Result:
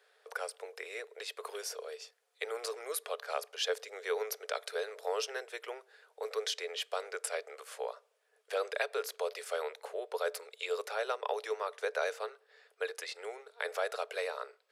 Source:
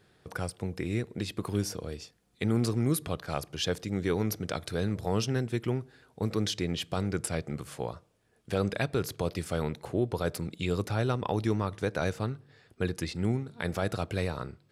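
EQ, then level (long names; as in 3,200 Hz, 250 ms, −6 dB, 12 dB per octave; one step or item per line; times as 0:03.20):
Chebyshev high-pass with heavy ripple 420 Hz, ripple 3 dB
0.0 dB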